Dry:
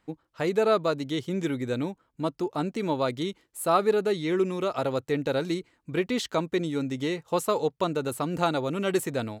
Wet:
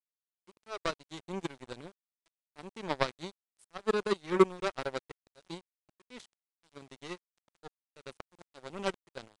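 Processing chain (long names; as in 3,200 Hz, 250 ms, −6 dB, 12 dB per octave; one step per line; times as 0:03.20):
comb filter 5.3 ms, depth 32%
volume swells 294 ms
power curve on the samples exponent 3
bit reduction 11 bits
downsampling to 22,050 Hz
level +6 dB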